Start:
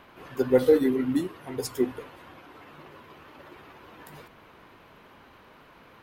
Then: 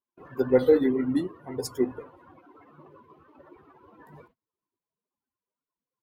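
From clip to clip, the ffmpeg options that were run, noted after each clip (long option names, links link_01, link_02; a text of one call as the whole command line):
ffmpeg -i in.wav -af "afftdn=noise_reduction=21:noise_floor=-43,agate=range=-30dB:threshold=-57dB:ratio=16:detection=peak" out.wav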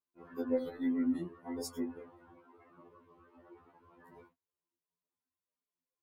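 ffmpeg -i in.wav -af "acompressor=threshold=-24dB:ratio=12,afftfilt=real='re*2*eq(mod(b,4),0)':imag='im*2*eq(mod(b,4),0)':win_size=2048:overlap=0.75,volume=-4dB" out.wav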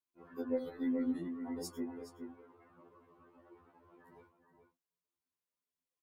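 ffmpeg -i in.wav -filter_complex "[0:a]asplit=2[link_01][link_02];[link_02]adelay=419.8,volume=-7dB,highshelf=frequency=4000:gain=-9.45[link_03];[link_01][link_03]amix=inputs=2:normalize=0,volume=-3dB" out.wav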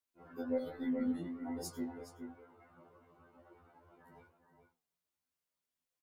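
ffmpeg -i in.wav -filter_complex "[0:a]flanger=delay=7.4:depth=5.3:regen=-88:speed=1.3:shape=triangular,asplit=2[link_01][link_02];[link_02]adelay=13,volume=-5dB[link_03];[link_01][link_03]amix=inputs=2:normalize=0,volume=5dB" out.wav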